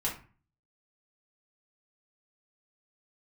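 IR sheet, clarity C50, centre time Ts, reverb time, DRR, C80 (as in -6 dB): 8.0 dB, 24 ms, 0.40 s, -4.5 dB, 14.0 dB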